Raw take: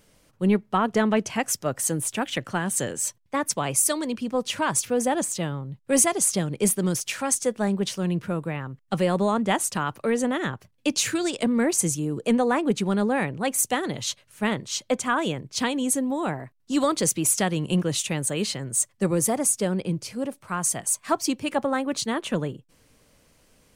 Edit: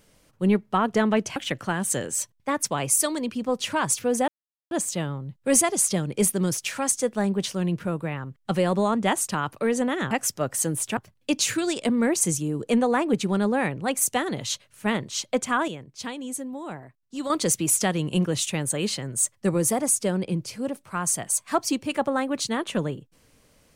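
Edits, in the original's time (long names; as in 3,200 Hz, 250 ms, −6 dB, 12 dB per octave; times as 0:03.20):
0:01.36–0:02.22: move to 0:10.54
0:05.14: splice in silence 0.43 s
0:15.25–0:16.87: clip gain −8.5 dB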